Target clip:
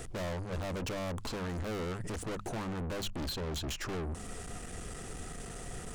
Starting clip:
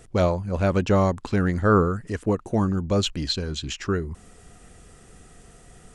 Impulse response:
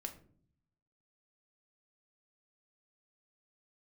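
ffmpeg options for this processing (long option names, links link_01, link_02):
-filter_complex "[0:a]acrossover=split=1200|3900[link_01][link_02][link_03];[link_01]acompressor=threshold=-25dB:ratio=4[link_04];[link_02]acompressor=threshold=-47dB:ratio=4[link_05];[link_03]acompressor=threshold=-44dB:ratio=4[link_06];[link_04][link_05][link_06]amix=inputs=3:normalize=0,aeval=exprs='(tanh(158*val(0)+0.3)-tanh(0.3))/158':channel_layout=same,bandreject=frequency=50:width_type=h:width=6,bandreject=frequency=100:width_type=h:width=6,bandreject=frequency=150:width_type=h:width=6,bandreject=frequency=200:width_type=h:width=6,volume=9dB"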